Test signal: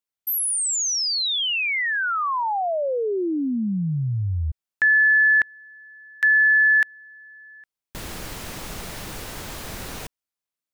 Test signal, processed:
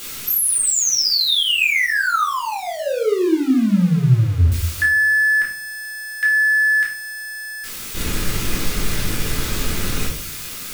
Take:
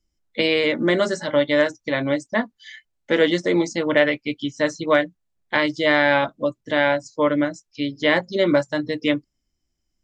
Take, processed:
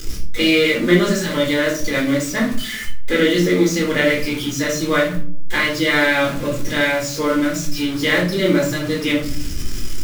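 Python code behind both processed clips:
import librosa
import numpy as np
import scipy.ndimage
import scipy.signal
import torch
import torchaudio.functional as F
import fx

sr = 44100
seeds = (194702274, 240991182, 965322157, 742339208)

y = x + 0.5 * 10.0 ** (-26.0 / 20.0) * np.sign(x)
y = fx.peak_eq(y, sr, hz=770.0, db=-11.5, octaves=0.95)
y = fx.room_shoebox(y, sr, seeds[0], volume_m3=470.0, walls='furnished', distance_m=3.9)
y = y * librosa.db_to_amplitude(-1.5)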